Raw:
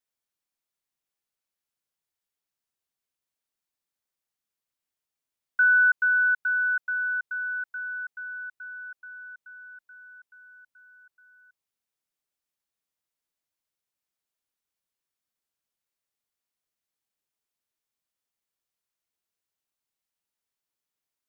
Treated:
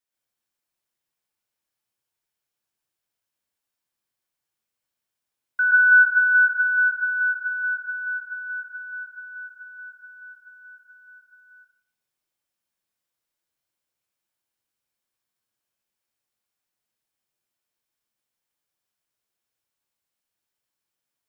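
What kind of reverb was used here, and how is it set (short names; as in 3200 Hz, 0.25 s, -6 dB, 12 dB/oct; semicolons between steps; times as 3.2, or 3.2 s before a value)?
plate-style reverb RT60 0.54 s, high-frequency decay 0.7×, pre-delay 0.11 s, DRR -4 dB; gain -1 dB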